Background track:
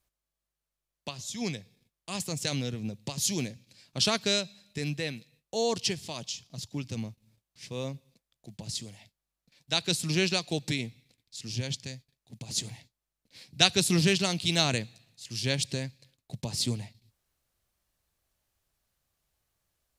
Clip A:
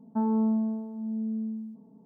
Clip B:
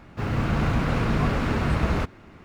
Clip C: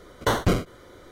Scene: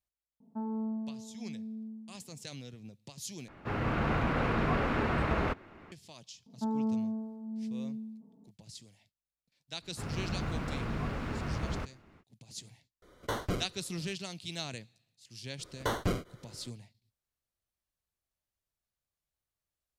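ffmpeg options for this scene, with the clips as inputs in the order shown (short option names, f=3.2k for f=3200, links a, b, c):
-filter_complex "[1:a]asplit=2[a][b];[2:a]asplit=2[c][d];[3:a]asplit=2[e][f];[0:a]volume=-13.5dB[g];[c]bass=f=250:g=-7,treble=f=4k:g=-11[h];[g]asplit=2[i][j];[i]atrim=end=3.484[k];[h]atrim=end=2.44,asetpts=PTS-STARTPTS,volume=-2.5dB[l];[j]atrim=start=5.916[m];[a]atrim=end=2.05,asetpts=PTS-STARTPTS,volume=-10dB,afade=t=in:d=0.004:c=hsin,afade=t=out:st=2.046:d=0.004:c=hsin,adelay=400[n];[b]atrim=end=2.05,asetpts=PTS-STARTPTS,volume=-6dB,afade=t=in:d=0.004:c=hsin,afade=t=out:st=2.046:d=0.004:c=hsin,adelay=6460[o];[d]atrim=end=2.44,asetpts=PTS-STARTPTS,volume=-12dB,afade=t=in:d=0.05,afade=t=out:st=2.39:d=0.05,adelay=9800[p];[e]atrim=end=1.11,asetpts=PTS-STARTPTS,volume=-12dB,afade=t=in:d=0.004:c=hsin,afade=t=out:st=1.106:d=0.004:c=hsin,adelay=13020[q];[f]atrim=end=1.11,asetpts=PTS-STARTPTS,volume=-9.5dB,afade=t=in:d=0.004:c=hsin,afade=t=out:st=1.106:d=0.004:c=hsin,adelay=15590[r];[k][l]acrossfade=d=0.004:c1=hsin:c2=hsin[s];[s][m]acrossfade=d=0.004:c1=hsin:c2=hsin[t];[t][n][o][p][q][r]amix=inputs=6:normalize=0"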